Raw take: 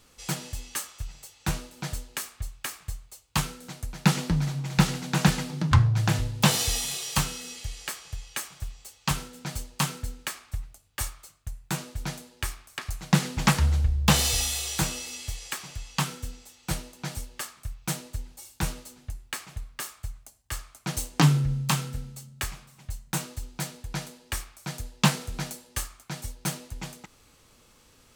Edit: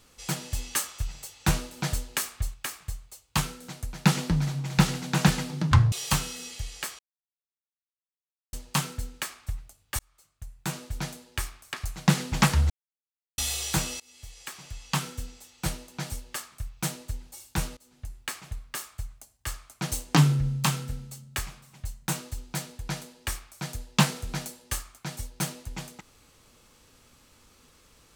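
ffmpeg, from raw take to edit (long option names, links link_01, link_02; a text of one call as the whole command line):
ffmpeg -i in.wav -filter_complex "[0:a]asplit=11[link_01][link_02][link_03][link_04][link_05][link_06][link_07][link_08][link_09][link_10][link_11];[link_01]atrim=end=0.522[link_12];[link_02]atrim=start=0.518:end=2.542,asetpts=PTS-STARTPTS,volume=4.5dB[link_13];[link_03]atrim=start=2.538:end=5.922[link_14];[link_04]atrim=start=6.968:end=8.04,asetpts=PTS-STARTPTS,afade=type=out:start_time=1.068:duration=0.004:curve=hsin[link_15];[link_05]atrim=start=8.04:end=9.58,asetpts=PTS-STARTPTS,volume=0[link_16];[link_06]atrim=start=9.58:end=11.04,asetpts=PTS-STARTPTS,afade=type=in:duration=0.004:curve=hsin,afade=type=out:start_time=1.456:duration=0.004:curve=hsin[link_17];[link_07]atrim=start=11.04:end=13.75,asetpts=PTS-STARTPTS,afade=type=in:duration=0.84,afade=type=out:start_time=2.706:duration=0.004:curve=hsin[link_18];[link_08]atrim=start=13.75:end=14.43,asetpts=PTS-STARTPTS,volume=0[link_19];[link_09]atrim=start=14.43:end=15.05,asetpts=PTS-STARTPTS,afade=type=in:duration=0.004:curve=hsin,afade=type=out:start_time=0.616:duration=0.004:curve=hsin:silence=0.0630957[link_20];[link_10]atrim=start=15.05:end=18.82,asetpts=PTS-STARTPTS,afade=type=in:duration=1.04:silence=0.0630957,afade=type=out:start_time=3.766:duration=0.004:curve=hsin:silence=0.0749894[link_21];[link_11]atrim=start=18.82,asetpts=PTS-STARTPTS,afade=type=in:duration=0.4:silence=0.0749894[link_22];[link_12][link_13]acrossfade=duration=0.004:curve1=hsin:curve2=hsin[link_23];[link_23][link_14]acrossfade=duration=0.004:curve1=hsin:curve2=hsin[link_24];[link_15][link_16][link_17][link_18][link_19][link_20][link_21][link_22]concat=n=8:v=0:a=1[link_25];[link_24][link_25]acrossfade=duration=0.004:curve1=hsin:curve2=hsin" out.wav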